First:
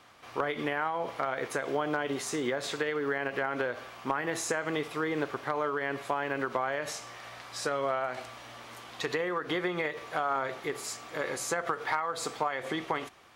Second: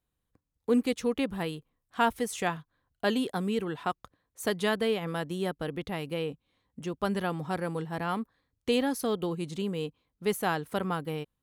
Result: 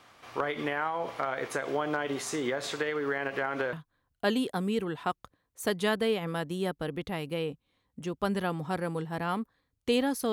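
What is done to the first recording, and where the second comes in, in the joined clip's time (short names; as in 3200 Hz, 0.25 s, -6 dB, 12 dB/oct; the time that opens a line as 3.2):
first
3.73 switch to second from 2.53 s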